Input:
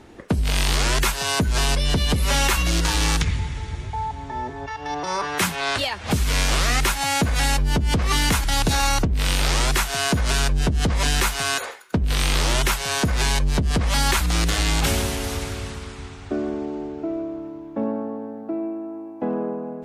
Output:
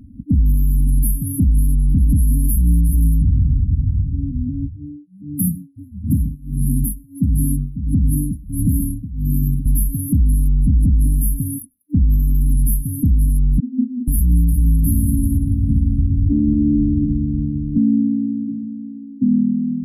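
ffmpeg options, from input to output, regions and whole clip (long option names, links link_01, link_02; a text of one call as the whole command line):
ffmpeg -i in.wav -filter_complex "[0:a]asettb=1/sr,asplit=3[link_01][link_02][link_03];[link_01]atrim=end=4.734[link_04];[link_02]atrim=start=4.73:end=9.66,asetpts=PTS-STARTPTS,afade=type=in:duration=0.004:curve=qsin,afade=type=out:start_time=4.926:duration=0.004:curve=qsin,highpass=81,tremolo=f=1.5:d=0.91,aecho=1:1:126:0.126,atrim=end_sample=217413[link_05];[link_03]atrim=start=9.656[link_06];[link_04][link_05]acrossfade=duration=0.004:curve1=hsin:curve2=qsin[link_07];[link_07][link_06]acrossfade=duration=0.004:curve1=qsin:curve2=hsin,asettb=1/sr,asplit=3[link_08][link_09][link_10];[link_08]atrim=end=13.604[link_11];[link_09]atrim=start=13.6:end=14.08,asetpts=PTS-STARTPTS,afade=type=in:duration=0.004:curve=qsin,afade=type=out:start_time=0.476:duration=0.004:curve=qsin,asuperpass=centerf=240:order=12:qfactor=5.2,asplit=2[link_12][link_13];[link_13]adelay=35,volume=-12dB[link_14];[link_12][link_14]amix=inputs=2:normalize=0,atrim=end_sample=21168[link_15];[link_10]atrim=start=14.076[link_16];[link_11][link_15]acrossfade=duration=0.004:curve1=hsin:curve2=qsin[link_17];[link_17][link_16]acrossfade=duration=0.004:curve1=qsin:curve2=hsin,asettb=1/sr,asplit=3[link_18][link_19][link_20];[link_18]atrim=end=15.694[link_21];[link_19]atrim=start=15.69:end=17.78,asetpts=PTS-STARTPTS,afade=type=in:duration=0.004:curve=qsin,afade=type=out:start_time=2.086:duration=0.004:curve=qsin,asubboost=boost=6:cutoff=160,acontrast=65[link_22];[link_20]atrim=start=17.776[link_23];[link_21][link_22]acrossfade=duration=0.004:curve1=hsin:curve2=qsin[link_24];[link_24][link_23]acrossfade=duration=0.004:curve1=qsin:curve2=hsin,afftfilt=real='re*(1-between(b*sr/4096,300,10000))':imag='im*(1-between(b*sr/4096,300,10000))':win_size=4096:overlap=0.75,afftdn=noise_reduction=23:noise_floor=-38,alimiter=level_in=22dB:limit=-1dB:release=50:level=0:latency=1,volume=-7.5dB" out.wav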